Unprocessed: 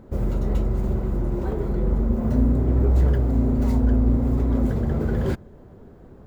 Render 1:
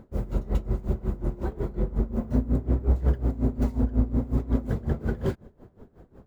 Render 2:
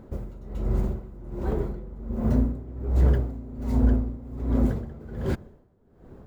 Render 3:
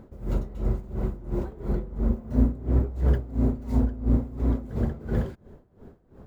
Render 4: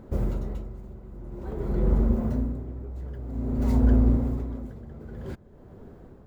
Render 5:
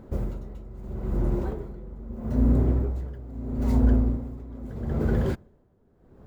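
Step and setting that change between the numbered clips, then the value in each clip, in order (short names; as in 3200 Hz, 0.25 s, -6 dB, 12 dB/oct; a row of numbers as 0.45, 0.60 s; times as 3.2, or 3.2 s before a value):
dB-linear tremolo, rate: 5.5, 1.3, 2.9, 0.51, 0.78 Hz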